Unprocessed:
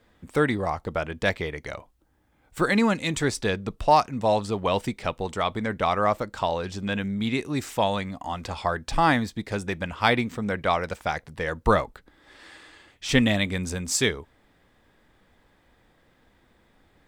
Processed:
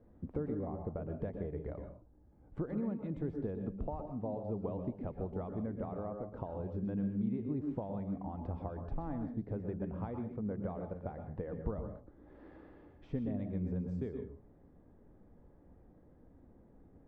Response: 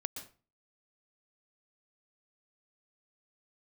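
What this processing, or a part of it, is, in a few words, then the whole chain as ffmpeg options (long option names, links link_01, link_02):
television next door: -filter_complex "[0:a]acompressor=threshold=-37dB:ratio=5,lowpass=500[link_01];[1:a]atrim=start_sample=2205[link_02];[link_01][link_02]afir=irnorm=-1:irlink=0,volume=3.5dB"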